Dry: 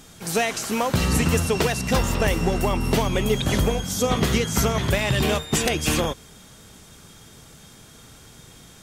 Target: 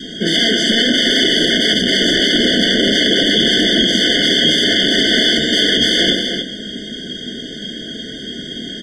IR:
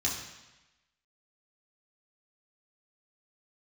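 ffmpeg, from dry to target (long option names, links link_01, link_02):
-filter_complex "[0:a]adynamicequalizer=threshold=0.0126:dfrequency=580:dqfactor=2.5:tfrequency=580:tqfactor=2.5:attack=5:release=100:ratio=0.375:range=2:mode=cutabove:tftype=bell,aeval=exprs='(mod(12.6*val(0)+1,2)-1)/12.6':channel_layout=same,lowpass=frequency=3300:width_type=q:width=3.2,lowshelf=frequency=170:width_type=q:width=3:gain=-11,aecho=1:1:160|291:0.188|0.251,asplit=2[link_01][link_02];[1:a]atrim=start_sample=2205,asetrate=66150,aresample=44100[link_03];[link_02][link_03]afir=irnorm=-1:irlink=0,volume=-8.5dB[link_04];[link_01][link_04]amix=inputs=2:normalize=0,alimiter=level_in=17.5dB:limit=-1dB:release=50:level=0:latency=1,afftfilt=real='re*eq(mod(floor(b*sr/1024/730),2),0)':imag='im*eq(mod(floor(b*sr/1024/730),2),0)':win_size=1024:overlap=0.75,volume=-1.5dB"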